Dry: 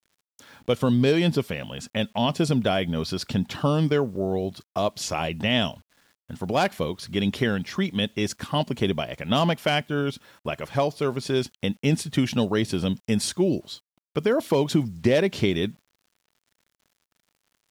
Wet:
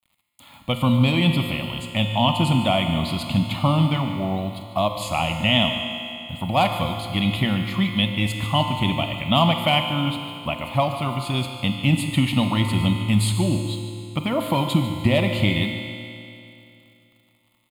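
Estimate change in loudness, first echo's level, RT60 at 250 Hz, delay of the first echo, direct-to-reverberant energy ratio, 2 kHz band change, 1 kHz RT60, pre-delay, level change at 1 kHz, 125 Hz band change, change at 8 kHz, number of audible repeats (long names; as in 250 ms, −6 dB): +3.0 dB, −14.0 dB, 2.8 s, 147 ms, 3.5 dB, +4.0 dB, 2.8 s, 28 ms, +6.0 dB, +6.0 dB, −0.5 dB, 1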